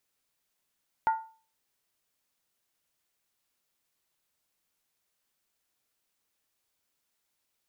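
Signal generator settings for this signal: skin hit, lowest mode 891 Hz, decay 0.39 s, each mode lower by 11 dB, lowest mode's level -19 dB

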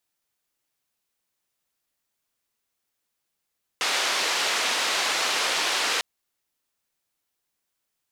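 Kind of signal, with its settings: noise band 470–4600 Hz, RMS -25 dBFS 2.20 s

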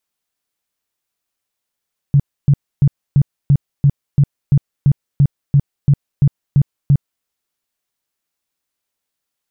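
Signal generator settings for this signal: tone bursts 141 Hz, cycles 8, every 0.34 s, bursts 15, -6.5 dBFS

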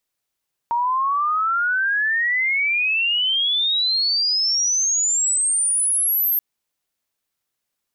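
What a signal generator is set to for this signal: chirp logarithmic 930 Hz -> 13000 Hz -17.5 dBFS -> -16.5 dBFS 5.68 s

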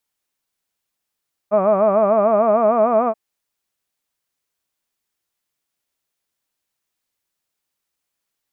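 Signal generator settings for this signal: formant-synthesis vowel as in hud, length 1.63 s, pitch 198 Hz, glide +3 st, vibrato 6.7 Hz, vibrato depth 1.3 st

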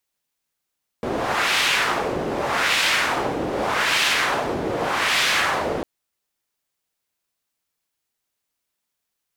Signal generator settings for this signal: wind-like swept noise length 4.80 s, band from 400 Hz, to 2700 Hz, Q 1.2, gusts 4, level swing 6 dB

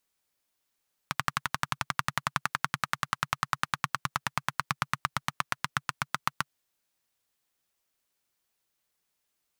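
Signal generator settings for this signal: single-cylinder engine model, changing speed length 5.42 s, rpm 1400, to 900, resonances 140/1200 Hz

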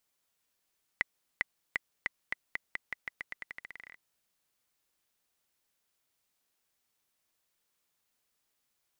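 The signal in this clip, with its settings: bouncing ball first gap 0.40 s, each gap 0.87, 2000 Hz, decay 18 ms -13 dBFS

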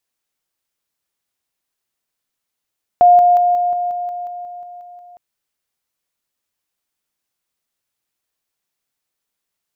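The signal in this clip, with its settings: level ladder 709 Hz -5 dBFS, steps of -3 dB, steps 12, 0.18 s 0.00 s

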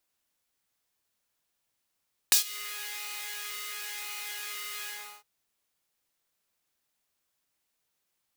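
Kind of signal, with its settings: synth patch with pulse-width modulation G#4, interval -12 st, detune 17 cents, sub -10 dB, noise -3 dB, filter highpass, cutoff 980 Hz, Q 1.2, filter envelope 2.5 oct, attack 1.1 ms, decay 0.11 s, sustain -22 dB, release 0.37 s, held 2.54 s, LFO 0.97 Hz, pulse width 37%, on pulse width 13%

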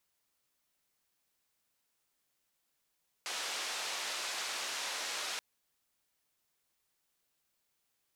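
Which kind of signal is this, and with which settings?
noise band 530–5800 Hz, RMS -38.5 dBFS 2.13 s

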